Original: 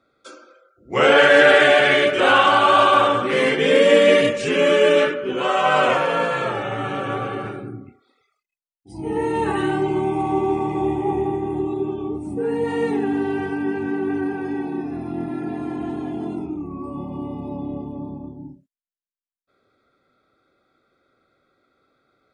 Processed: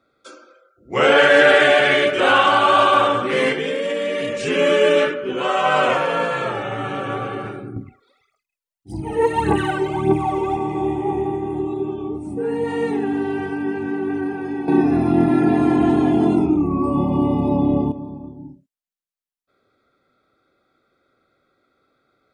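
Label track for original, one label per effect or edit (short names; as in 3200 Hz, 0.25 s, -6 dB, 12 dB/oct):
3.520000	4.390000	compressor 10:1, threshold -19 dBFS
7.760000	10.570000	phaser 1.7 Hz, delay 2.3 ms, feedback 70%
14.680000	17.920000	gain +11.5 dB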